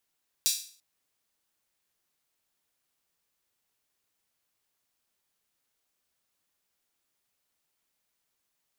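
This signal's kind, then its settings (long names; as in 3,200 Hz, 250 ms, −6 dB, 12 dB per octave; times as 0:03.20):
open synth hi-hat length 0.34 s, high-pass 4,400 Hz, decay 0.45 s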